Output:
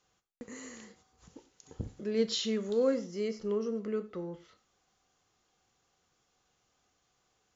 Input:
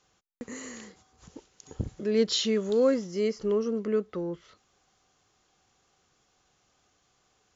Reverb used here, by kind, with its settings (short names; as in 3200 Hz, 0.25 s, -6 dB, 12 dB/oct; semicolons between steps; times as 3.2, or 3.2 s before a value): non-linear reverb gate 0.15 s falling, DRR 9.5 dB; gain -6 dB